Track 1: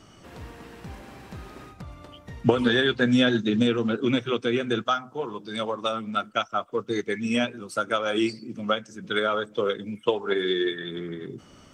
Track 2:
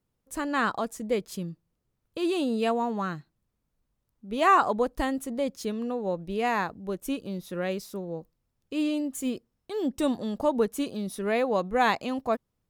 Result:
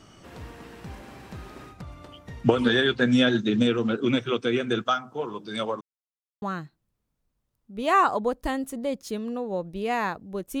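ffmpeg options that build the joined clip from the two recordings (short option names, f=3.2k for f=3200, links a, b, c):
-filter_complex "[0:a]apad=whole_dur=10.6,atrim=end=10.6,asplit=2[a][b];[a]atrim=end=5.81,asetpts=PTS-STARTPTS,afade=t=out:st=5.806:d=0.004:c=hsin[c];[b]atrim=start=5.81:end=6.42,asetpts=PTS-STARTPTS,volume=0[d];[1:a]atrim=start=2.96:end=7.14,asetpts=PTS-STARTPTS,afade=t=in:d=0.004:c=hsin[e];[c][d][e]concat=n=3:v=0:a=1"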